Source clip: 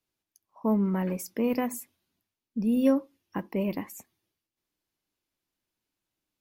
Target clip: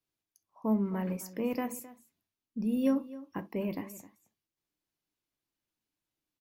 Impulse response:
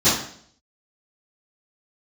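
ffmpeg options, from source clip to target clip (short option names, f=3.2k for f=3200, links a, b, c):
-filter_complex "[0:a]asplit=2[a][b];[b]adelay=262.4,volume=-17dB,highshelf=f=4k:g=-5.9[c];[a][c]amix=inputs=2:normalize=0,asplit=2[d][e];[1:a]atrim=start_sample=2205,atrim=end_sample=3087[f];[e][f]afir=irnorm=-1:irlink=0,volume=-32dB[g];[d][g]amix=inputs=2:normalize=0,volume=-5dB"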